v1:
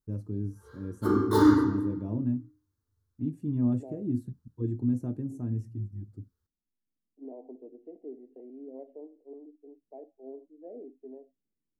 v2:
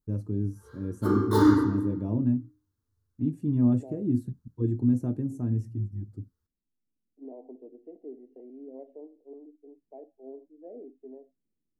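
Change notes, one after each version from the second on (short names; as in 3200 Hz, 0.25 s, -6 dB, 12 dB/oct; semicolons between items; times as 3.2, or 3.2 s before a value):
first voice +4.0 dB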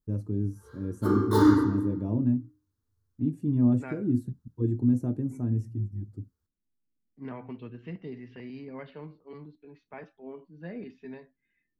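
second voice: remove elliptic band-pass 280–710 Hz, stop band 40 dB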